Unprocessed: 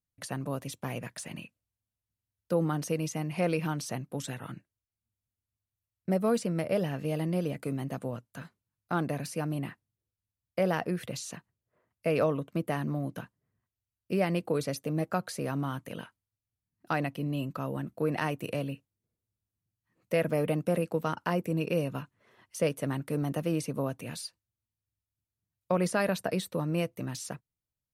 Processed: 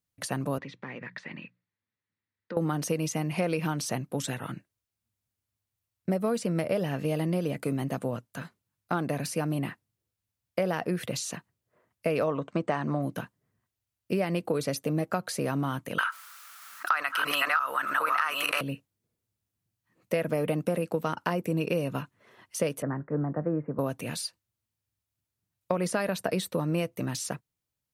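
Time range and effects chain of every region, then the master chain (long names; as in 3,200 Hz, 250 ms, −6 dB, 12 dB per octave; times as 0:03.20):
0:00.58–0:02.57: mains-hum notches 60/120/180 Hz + downward compressor 2.5 to 1, threshold −42 dBFS + loudspeaker in its box 140–3,900 Hz, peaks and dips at 670 Hz −9 dB, 1,900 Hz +9 dB, 3,000 Hz −6 dB
0:12.27–0:13.02: Chebyshev low-pass filter 8,700 Hz, order 10 + parametric band 980 Hz +7 dB 2 octaves
0:15.98–0:18.61: delay that plays each chunk backwards 634 ms, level −0.5 dB + high-pass with resonance 1,300 Hz, resonance Q 6.1 + envelope flattener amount 50%
0:22.82–0:23.79: Butterworth low-pass 1,800 Hz 48 dB per octave + tuned comb filter 50 Hz, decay 0.21 s, mix 40% + multiband upward and downward expander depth 70%
whole clip: low-shelf EQ 70 Hz −9.5 dB; downward compressor, threshold −29 dBFS; level +5.5 dB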